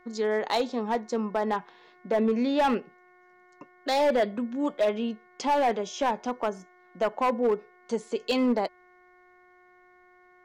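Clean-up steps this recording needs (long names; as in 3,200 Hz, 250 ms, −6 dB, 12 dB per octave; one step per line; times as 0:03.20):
clipped peaks rebuilt −18.5 dBFS
hum removal 361.7 Hz, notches 6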